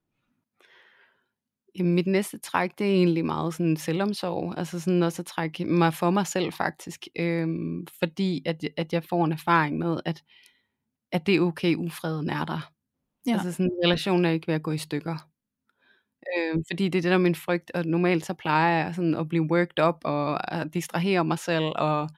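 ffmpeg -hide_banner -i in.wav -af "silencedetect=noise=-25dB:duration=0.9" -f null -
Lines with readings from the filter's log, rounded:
silence_start: 0.00
silence_end: 1.80 | silence_duration: 1.80
silence_start: 10.11
silence_end: 11.13 | silence_duration: 1.01
silence_start: 15.13
silence_end: 16.29 | silence_duration: 1.15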